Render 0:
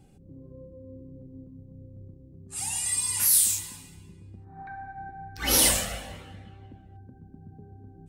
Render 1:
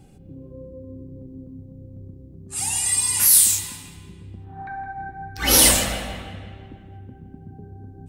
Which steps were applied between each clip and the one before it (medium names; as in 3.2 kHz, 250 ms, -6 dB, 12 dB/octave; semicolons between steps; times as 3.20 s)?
bucket-brigade echo 165 ms, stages 4096, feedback 52%, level -11 dB; trim +6.5 dB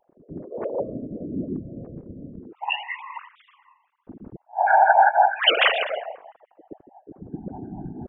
formants replaced by sine waves; level-controlled noise filter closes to 390 Hz, open at -14 dBFS; whisper effect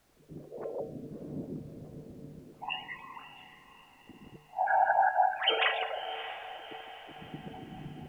feedback comb 150 Hz, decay 0.55 s, harmonics odd, mix 80%; added noise pink -70 dBFS; echo that smears into a reverb 624 ms, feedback 50%, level -13 dB; trim +2 dB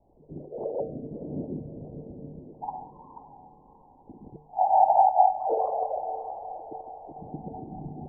steep low-pass 910 Hz 72 dB/octave; peaking EQ 190 Hz -2.5 dB 2 oct; trim +7.5 dB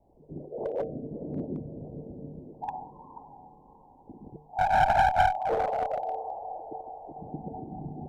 one-sided clip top -25.5 dBFS